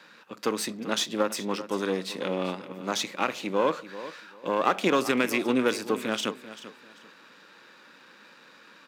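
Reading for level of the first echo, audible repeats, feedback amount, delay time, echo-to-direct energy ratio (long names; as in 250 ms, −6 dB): −14.5 dB, 2, 24%, 390 ms, −14.5 dB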